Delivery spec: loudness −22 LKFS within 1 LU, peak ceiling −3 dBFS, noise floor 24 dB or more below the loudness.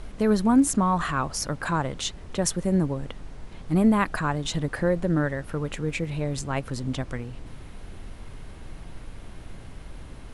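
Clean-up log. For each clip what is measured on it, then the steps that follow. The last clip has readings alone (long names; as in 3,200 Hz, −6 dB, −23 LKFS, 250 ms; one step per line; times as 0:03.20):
background noise floor −42 dBFS; target noise floor −50 dBFS; integrated loudness −25.5 LKFS; sample peak −7.5 dBFS; target loudness −22.0 LKFS
→ noise reduction from a noise print 8 dB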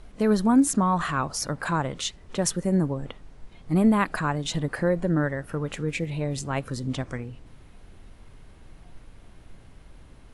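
background noise floor −50 dBFS; integrated loudness −25.5 LKFS; sample peak −7.5 dBFS; target loudness −22.0 LKFS
→ level +3.5 dB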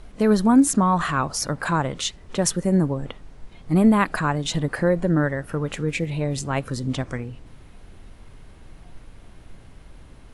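integrated loudness −22.0 LKFS; sample peak −4.0 dBFS; background noise floor −47 dBFS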